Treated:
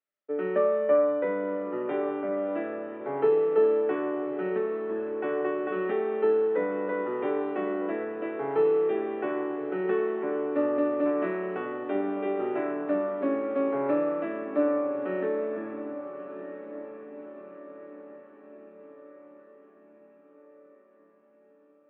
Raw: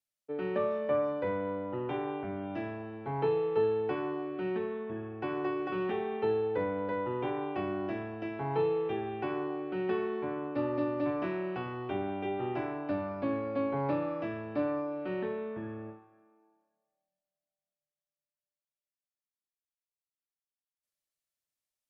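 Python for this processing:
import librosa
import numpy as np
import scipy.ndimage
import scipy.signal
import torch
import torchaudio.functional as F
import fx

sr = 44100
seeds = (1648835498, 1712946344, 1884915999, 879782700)

y = fx.cabinet(x, sr, low_hz=180.0, low_slope=24, high_hz=3300.0, hz=(180.0, 290.0, 420.0, 600.0, 1300.0, 1900.0), db=(4, 6, 8, 9, 10, 7))
y = fx.echo_diffused(y, sr, ms=1248, feedback_pct=52, wet_db=-11.5)
y = y * 10.0 ** (-2.5 / 20.0)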